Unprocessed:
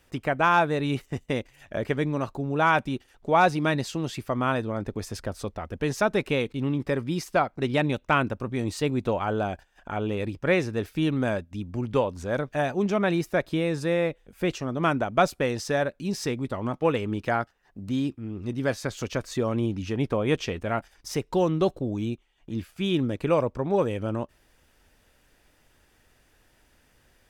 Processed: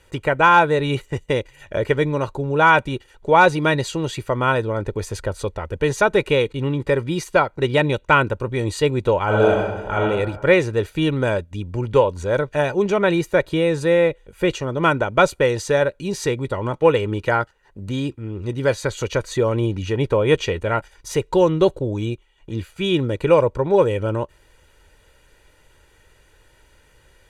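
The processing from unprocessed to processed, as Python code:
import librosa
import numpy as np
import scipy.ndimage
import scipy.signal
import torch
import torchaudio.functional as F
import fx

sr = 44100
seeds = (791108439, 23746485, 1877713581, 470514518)

y = fx.reverb_throw(x, sr, start_s=9.25, length_s=0.74, rt60_s=1.2, drr_db=-3.5)
y = scipy.signal.sosfilt(scipy.signal.butter(2, 11000.0, 'lowpass', fs=sr, output='sos'), y)
y = fx.notch(y, sr, hz=5300.0, q=6.6)
y = y + 0.55 * np.pad(y, (int(2.1 * sr / 1000.0), 0))[:len(y)]
y = y * 10.0 ** (6.0 / 20.0)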